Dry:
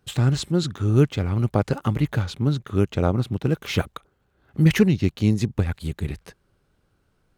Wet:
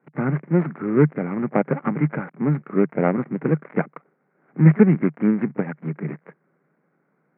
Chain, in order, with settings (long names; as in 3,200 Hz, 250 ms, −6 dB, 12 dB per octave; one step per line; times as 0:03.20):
gap after every zero crossing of 0.22 ms
Chebyshev band-pass filter 150–2,200 Hz, order 5
echo ahead of the sound 30 ms −22 dB
level +4 dB